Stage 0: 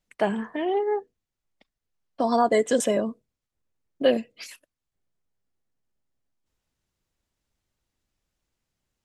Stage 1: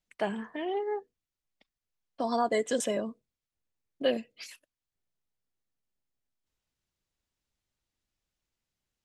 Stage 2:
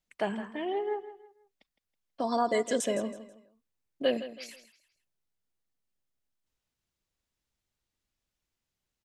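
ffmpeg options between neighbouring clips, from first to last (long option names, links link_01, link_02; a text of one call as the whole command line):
ffmpeg -i in.wav -af "equalizer=frequency=3900:width=0.5:gain=4,volume=-7.5dB" out.wav
ffmpeg -i in.wav -af "aecho=1:1:162|324|486:0.211|0.0676|0.0216" out.wav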